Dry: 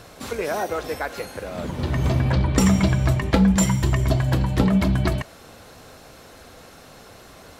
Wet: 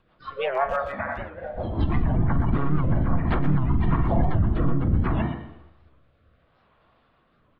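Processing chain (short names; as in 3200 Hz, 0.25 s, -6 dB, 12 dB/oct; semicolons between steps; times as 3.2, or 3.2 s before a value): de-hum 157.5 Hz, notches 5; monotone LPC vocoder at 8 kHz 140 Hz; bell 1100 Hz +11.5 dB 0.26 oct; spectral noise reduction 22 dB; treble ducked by the level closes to 1400 Hz, closed at -15.5 dBFS; on a send at -6 dB: reverb RT60 0.85 s, pre-delay 40 ms; on the sum: limiter -16.5 dBFS, peak gain reduction 12 dB; notch 400 Hz, Q 12; harmoniser +4 st -8 dB; rotary speaker horn 6 Hz, later 0.7 Hz, at 3.08; speakerphone echo 0.12 s, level -9 dB; record warp 78 rpm, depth 160 cents; gain +3.5 dB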